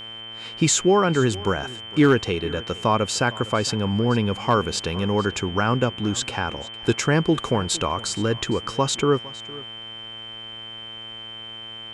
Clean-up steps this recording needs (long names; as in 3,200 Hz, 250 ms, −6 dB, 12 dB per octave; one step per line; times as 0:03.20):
clipped peaks rebuilt −8 dBFS
hum removal 113.3 Hz, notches 30
notch filter 3,100 Hz, Q 30
echo removal 459 ms −20 dB